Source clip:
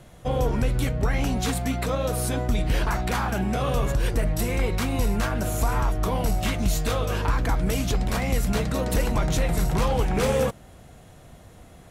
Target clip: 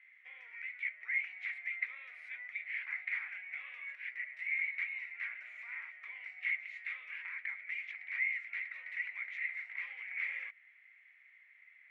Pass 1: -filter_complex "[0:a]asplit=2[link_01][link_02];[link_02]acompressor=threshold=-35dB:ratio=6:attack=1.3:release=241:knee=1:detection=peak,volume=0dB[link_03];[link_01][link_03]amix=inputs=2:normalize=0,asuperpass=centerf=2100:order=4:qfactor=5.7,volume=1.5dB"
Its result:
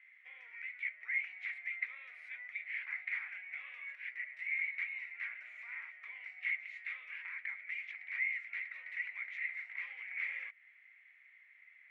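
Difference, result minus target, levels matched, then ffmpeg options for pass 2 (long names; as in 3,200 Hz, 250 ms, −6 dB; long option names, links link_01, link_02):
downward compressor: peak gain reduction +6 dB
-filter_complex "[0:a]asplit=2[link_01][link_02];[link_02]acompressor=threshold=-28dB:ratio=6:attack=1.3:release=241:knee=1:detection=peak,volume=0dB[link_03];[link_01][link_03]amix=inputs=2:normalize=0,asuperpass=centerf=2100:order=4:qfactor=5.7,volume=1.5dB"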